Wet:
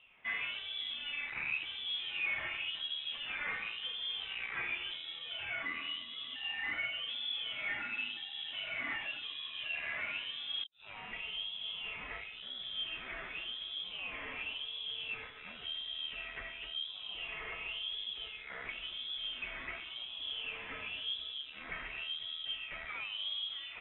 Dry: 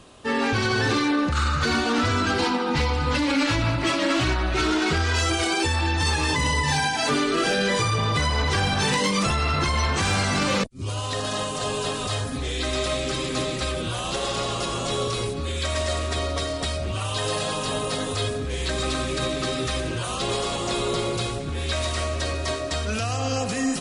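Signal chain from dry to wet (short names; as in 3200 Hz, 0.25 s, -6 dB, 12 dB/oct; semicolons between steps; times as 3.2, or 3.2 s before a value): high shelf 3000 Hz +11.5 dB; tube stage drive 24 dB, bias 0.65; wah 0.93 Hz 460–1800 Hz, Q 3.7; inverted band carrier 3800 Hz; gain -1 dB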